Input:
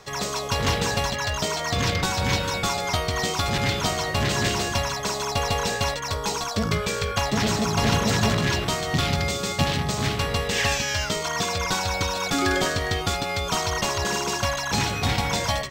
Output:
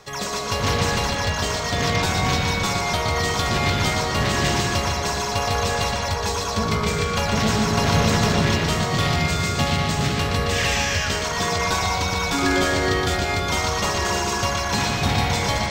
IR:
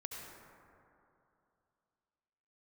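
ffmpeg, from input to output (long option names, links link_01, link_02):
-filter_complex "[0:a]asplit=2[link_01][link_02];[link_02]lowpass=7600[link_03];[1:a]atrim=start_sample=2205,asetrate=48510,aresample=44100,adelay=119[link_04];[link_03][link_04]afir=irnorm=-1:irlink=0,volume=2.5dB[link_05];[link_01][link_05]amix=inputs=2:normalize=0"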